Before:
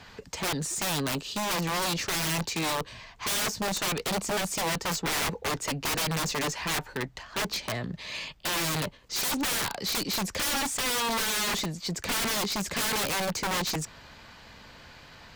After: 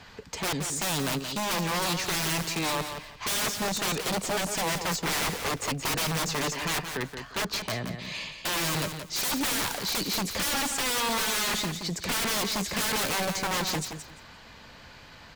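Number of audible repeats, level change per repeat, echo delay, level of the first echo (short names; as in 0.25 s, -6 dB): 2, -14.0 dB, 0.174 s, -8.0 dB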